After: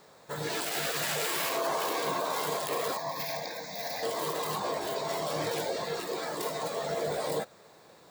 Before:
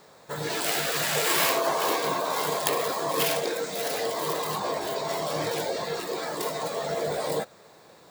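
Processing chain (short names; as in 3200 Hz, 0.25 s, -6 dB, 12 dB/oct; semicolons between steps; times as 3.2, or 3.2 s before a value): limiter -18 dBFS, peak gain reduction 10.5 dB; 2.97–4.03 fixed phaser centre 2000 Hz, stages 8; gain -3 dB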